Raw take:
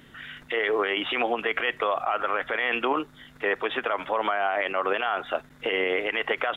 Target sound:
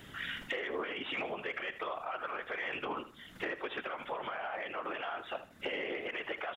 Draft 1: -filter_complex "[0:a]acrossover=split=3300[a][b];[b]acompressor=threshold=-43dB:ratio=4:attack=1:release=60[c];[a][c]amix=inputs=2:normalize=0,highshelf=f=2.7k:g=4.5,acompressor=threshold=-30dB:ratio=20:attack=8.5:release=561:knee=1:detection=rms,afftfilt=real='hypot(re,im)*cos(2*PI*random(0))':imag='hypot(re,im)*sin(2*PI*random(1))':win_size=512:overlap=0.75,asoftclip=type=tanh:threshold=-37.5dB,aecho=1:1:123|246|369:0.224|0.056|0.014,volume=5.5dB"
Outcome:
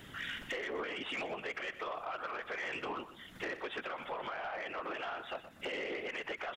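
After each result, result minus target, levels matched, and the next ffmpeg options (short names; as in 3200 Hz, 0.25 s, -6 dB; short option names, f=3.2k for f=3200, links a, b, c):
echo 45 ms late; soft clip: distortion +12 dB
-filter_complex "[0:a]acrossover=split=3300[a][b];[b]acompressor=threshold=-43dB:ratio=4:attack=1:release=60[c];[a][c]amix=inputs=2:normalize=0,highshelf=f=2.7k:g=4.5,acompressor=threshold=-30dB:ratio=20:attack=8.5:release=561:knee=1:detection=rms,afftfilt=real='hypot(re,im)*cos(2*PI*random(0))':imag='hypot(re,im)*sin(2*PI*random(1))':win_size=512:overlap=0.75,asoftclip=type=tanh:threshold=-37.5dB,aecho=1:1:78|156|234:0.224|0.056|0.014,volume=5.5dB"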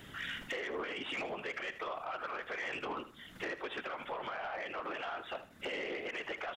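soft clip: distortion +12 dB
-filter_complex "[0:a]acrossover=split=3300[a][b];[b]acompressor=threshold=-43dB:ratio=4:attack=1:release=60[c];[a][c]amix=inputs=2:normalize=0,highshelf=f=2.7k:g=4.5,acompressor=threshold=-30dB:ratio=20:attack=8.5:release=561:knee=1:detection=rms,afftfilt=real='hypot(re,im)*cos(2*PI*random(0))':imag='hypot(re,im)*sin(2*PI*random(1))':win_size=512:overlap=0.75,asoftclip=type=tanh:threshold=-29dB,aecho=1:1:78|156|234:0.224|0.056|0.014,volume=5.5dB"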